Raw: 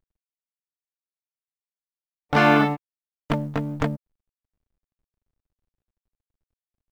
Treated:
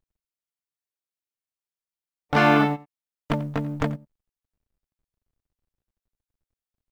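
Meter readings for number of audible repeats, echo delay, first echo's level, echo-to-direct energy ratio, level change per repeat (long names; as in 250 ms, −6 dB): 1, 89 ms, −19.0 dB, −19.0 dB, repeats not evenly spaced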